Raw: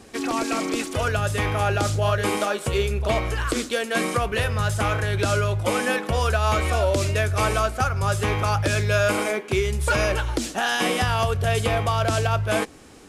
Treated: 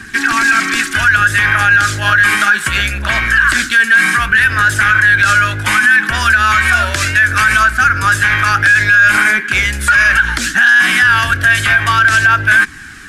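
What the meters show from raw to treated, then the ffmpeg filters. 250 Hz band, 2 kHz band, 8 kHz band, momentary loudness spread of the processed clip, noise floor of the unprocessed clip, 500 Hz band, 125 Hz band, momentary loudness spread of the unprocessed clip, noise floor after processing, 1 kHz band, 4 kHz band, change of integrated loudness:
+2.5 dB, +21.0 dB, +10.0 dB, 5 LU, -40 dBFS, -7.5 dB, +2.0 dB, 3 LU, -25 dBFS, +10.5 dB, +11.0 dB, +13.0 dB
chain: -filter_complex "[0:a]aphaser=in_gain=1:out_gain=1:delay=1.8:decay=0.27:speed=0.65:type=triangular,acrossover=split=330[s0][s1];[s0]asoftclip=type=tanh:threshold=0.0282[s2];[s1]highpass=f=1600:t=q:w=9.9[s3];[s2][s3]amix=inputs=2:normalize=0,alimiter=level_in=3.98:limit=0.891:release=50:level=0:latency=1,volume=0.891"

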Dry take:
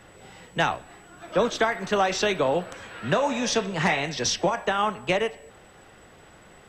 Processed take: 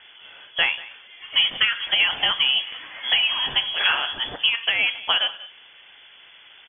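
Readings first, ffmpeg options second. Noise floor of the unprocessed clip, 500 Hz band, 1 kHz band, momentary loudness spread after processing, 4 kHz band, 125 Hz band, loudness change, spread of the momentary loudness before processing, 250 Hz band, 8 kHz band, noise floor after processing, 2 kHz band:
-51 dBFS, -16.0 dB, -6.0 dB, 13 LU, +14.0 dB, under -15 dB, +4.5 dB, 6 LU, -18.0 dB, under -40 dB, -50 dBFS, +6.0 dB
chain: -af "aecho=1:1:189:0.112,lowpass=f=3000:t=q:w=0.5098,lowpass=f=3000:t=q:w=0.6013,lowpass=f=3000:t=q:w=0.9,lowpass=f=3000:t=q:w=2.563,afreqshift=-3500,volume=1.33"

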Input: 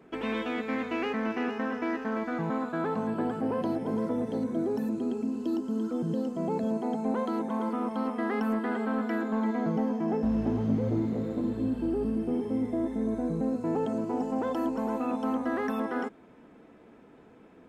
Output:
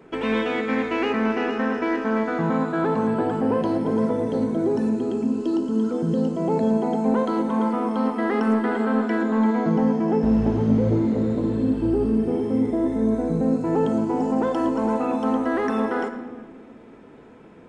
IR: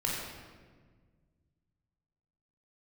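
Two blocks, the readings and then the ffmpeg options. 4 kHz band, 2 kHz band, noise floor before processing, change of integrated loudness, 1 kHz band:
no reading, +7.5 dB, -54 dBFS, +8.0 dB, +7.5 dB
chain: -filter_complex "[0:a]aresample=22050,aresample=44100,asplit=2[s0][s1];[1:a]atrim=start_sample=2205[s2];[s1][s2]afir=irnorm=-1:irlink=0,volume=0.299[s3];[s0][s3]amix=inputs=2:normalize=0,volume=1.68"

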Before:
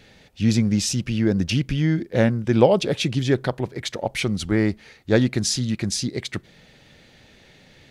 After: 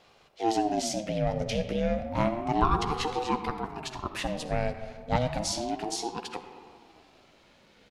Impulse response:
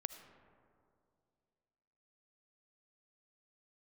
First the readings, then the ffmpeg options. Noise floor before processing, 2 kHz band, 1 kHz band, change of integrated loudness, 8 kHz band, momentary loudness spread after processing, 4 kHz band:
-53 dBFS, -9.0 dB, +4.0 dB, -8.0 dB, -8.5 dB, 9 LU, -8.5 dB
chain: -filter_complex "[0:a]asplit=2[s0][s1];[s1]adelay=13,volume=0.251[s2];[s0][s2]amix=inputs=2:normalize=0[s3];[1:a]atrim=start_sample=2205,asetrate=52920,aresample=44100[s4];[s3][s4]afir=irnorm=-1:irlink=0,aeval=exprs='val(0)*sin(2*PI*480*n/s+480*0.3/0.31*sin(2*PI*0.31*n/s))':c=same,volume=0.841"

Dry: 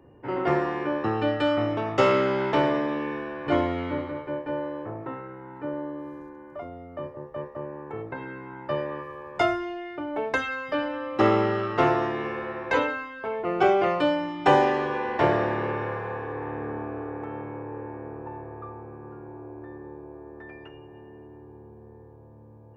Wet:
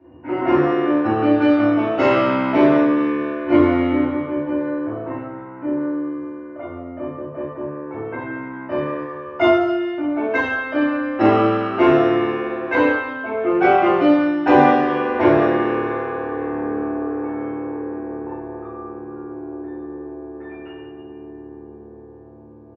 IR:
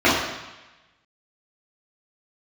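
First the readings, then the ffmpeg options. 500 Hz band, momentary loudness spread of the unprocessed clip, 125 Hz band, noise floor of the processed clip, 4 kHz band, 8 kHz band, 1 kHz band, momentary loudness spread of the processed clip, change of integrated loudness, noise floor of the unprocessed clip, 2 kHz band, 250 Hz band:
+6.5 dB, 20 LU, +3.5 dB, -40 dBFS, +2.0 dB, no reading, +6.0 dB, 18 LU, +8.0 dB, -48 dBFS, +6.5 dB, +12.0 dB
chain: -filter_complex "[1:a]atrim=start_sample=2205[s0];[0:a][s0]afir=irnorm=-1:irlink=0,aresample=16000,aresample=44100,volume=0.126"

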